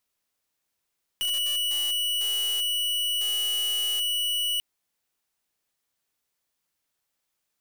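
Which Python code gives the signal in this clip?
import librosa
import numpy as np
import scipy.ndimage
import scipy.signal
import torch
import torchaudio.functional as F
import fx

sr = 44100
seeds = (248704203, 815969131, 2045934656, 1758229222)

y = fx.pulse(sr, length_s=3.39, hz=2940.0, level_db=-26.5, duty_pct=44)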